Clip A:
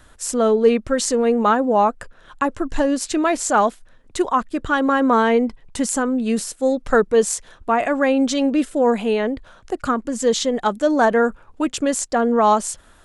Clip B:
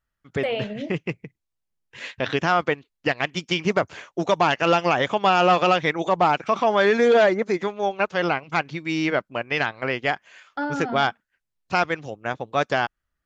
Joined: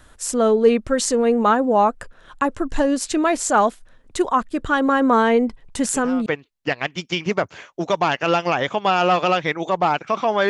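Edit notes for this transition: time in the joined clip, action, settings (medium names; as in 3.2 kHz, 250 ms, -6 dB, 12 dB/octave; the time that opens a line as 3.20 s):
clip A
5.84 s: add clip B from 2.23 s 0.42 s -15 dB
6.26 s: go over to clip B from 2.65 s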